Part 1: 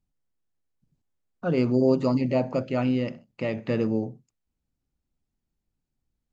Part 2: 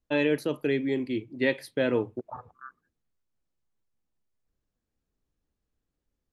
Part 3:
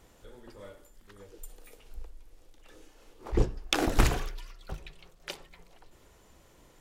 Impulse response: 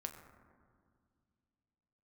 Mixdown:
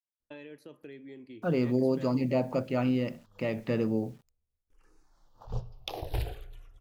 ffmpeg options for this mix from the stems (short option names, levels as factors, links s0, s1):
-filter_complex "[0:a]alimiter=limit=0.211:level=0:latency=1:release=247,acrusher=bits=9:mix=0:aa=0.000001,volume=0.708,asplit=2[s0][s1];[1:a]acompressor=threshold=0.0224:ratio=4,adelay=200,volume=0.224,asplit=2[s2][s3];[s3]volume=0.251[s4];[2:a]equalizer=f=125:t=o:w=1:g=4,equalizer=f=250:t=o:w=1:g=-11,equalizer=f=2000:t=o:w=1:g=-9,equalizer=f=8000:t=o:w=1:g=-10,asplit=2[s5][s6];[s6]afreqshift=-0.47[s7];[s5][s7]amix=inputs=2:normalize=1,adelay=2150,volume=0.531,asplit=3[s8][s9][s10];[s8]atrim=end=4.13,asetpts=PTS-STARTPTS,afade=t=out:st=4.126:d=0.004:c=hsin[s11];[s9]atrim=start=4.13:end=4.7,asetpts=PTS-STARTPTS,volume=0[s12];[s10]atrim=start=4.7,asetpts=PTS-STARTPTS,afade=t=in:d=0.004:c=hsin[s13];[s11][s12][s13]concat=n=3:v=0:a=1,asplit=2[s14][s15];[s15]volume=0.2[s16];[s1]apad=whole_len=395013[s17];[s14][s17]sidechaincompress=threshold=0.00282:ratio=8:attack=16:release=152[s18];[3:a]atrim=start_sample=2205[s19];[s4][s16]amix=inputs=2:normalize=0[s20];[s20][s19]afir=irnorm=-1:irlink=0[s21];[s0][s2][s18][s21]amix=inputs=4:normalize=0"